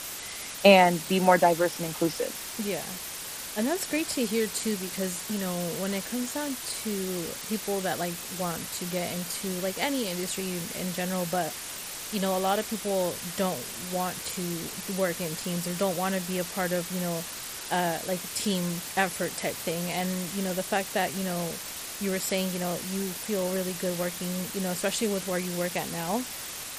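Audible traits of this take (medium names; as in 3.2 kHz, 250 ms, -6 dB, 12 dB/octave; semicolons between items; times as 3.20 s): a quantiser's noise floor 6-bit, dither triangular; MP3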